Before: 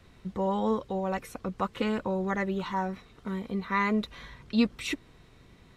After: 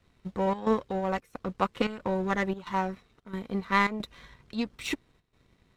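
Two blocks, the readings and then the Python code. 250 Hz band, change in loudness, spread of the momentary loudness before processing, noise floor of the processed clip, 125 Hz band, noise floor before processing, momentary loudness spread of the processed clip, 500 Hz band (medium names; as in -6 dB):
-2.0 dB, 0.0 dB, 11 LU, -68 dBFS, -0.5 dB, -57 dBFS, 13 LU, +0.5 dB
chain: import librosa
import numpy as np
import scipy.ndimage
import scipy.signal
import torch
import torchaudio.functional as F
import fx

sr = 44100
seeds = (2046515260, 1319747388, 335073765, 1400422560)

y = fx.chopper(x, sr, hz=1.5, depth_pct=60, duty_pct=80)
y = fx.power_curve(y, sr, exponent=1.4)
y = y * librosa.db_to_amplitude(6.0)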